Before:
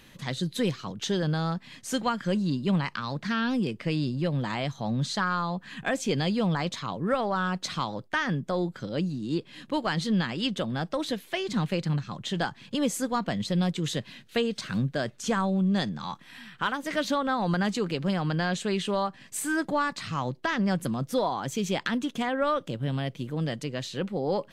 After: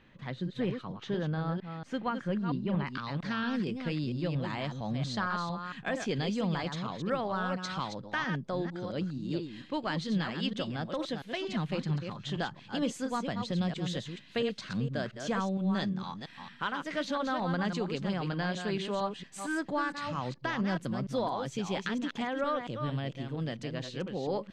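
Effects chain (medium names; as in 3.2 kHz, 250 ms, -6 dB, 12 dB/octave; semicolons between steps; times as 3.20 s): chunks repeated in reverse 229 ms, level -6.5 dB; low-pass 2.4 kHz 12 dB/octave, from 2.87 s 5.9 kHz; trim -5.5 dB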